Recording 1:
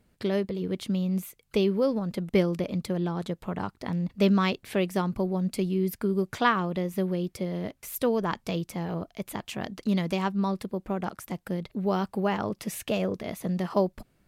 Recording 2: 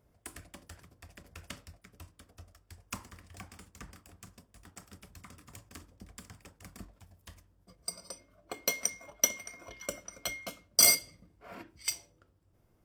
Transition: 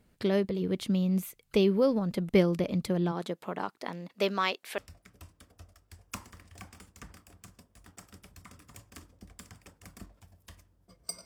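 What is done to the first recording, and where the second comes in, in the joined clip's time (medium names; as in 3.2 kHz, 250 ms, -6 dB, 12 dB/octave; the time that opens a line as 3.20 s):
recording 1
3.11–4.78 s: high-pass 230 Hz -> 630 Hz
4.78 s: go over to recording 2 from 1.57 s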